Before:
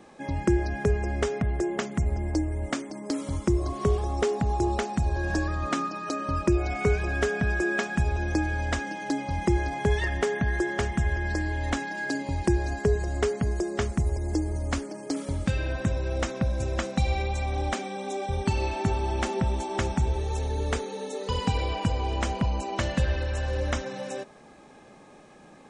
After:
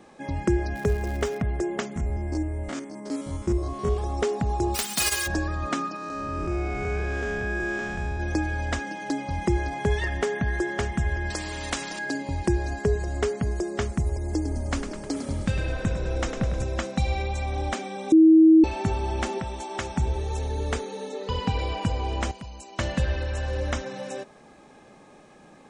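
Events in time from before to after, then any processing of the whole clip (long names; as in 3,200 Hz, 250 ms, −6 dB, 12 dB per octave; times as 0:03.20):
0:00.74–0:01.39: surface crackle 280 per second −34 dBFS
0:01.96–0:03.97: spectrum averaged block by block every 50 ms
0:04.74–0:05.26: spectral envelope flattened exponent 0.1
0:05.96–0:08.20: spectrum smeared in time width 250 ms
0:11.30–0:11.99: every bin compressed towards the loudest bin 2 to 1
0:14.34–0:16.64: echo with shifted repeats 103 ms, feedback 59%, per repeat −34 Hz, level −8.5 dB
0:18.12–0:18.64: beep over 320 Hz −10.5 dBFS
0:19.38–0:19.96: low-shelf EQ 390 Hz −9 dB
0:21.09–0:21.59: low-pass filter 5,100 Hz
0:22.31–0:22.79: first-order pre-emphasis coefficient 0.8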